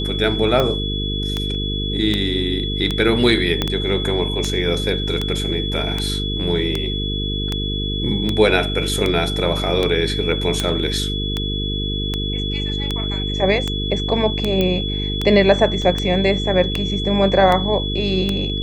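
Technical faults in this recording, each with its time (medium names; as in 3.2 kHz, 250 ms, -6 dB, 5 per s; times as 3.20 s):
buzz 50 Hz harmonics 9 -24 dBFS
tick 78 rpm -7 dBFS
whine 3.4 kHz -25 dBFS
3.62 s: pop -5 dBFS
14.61 s: pop -7 dBFS
15.82 s: dropout 2.2 ms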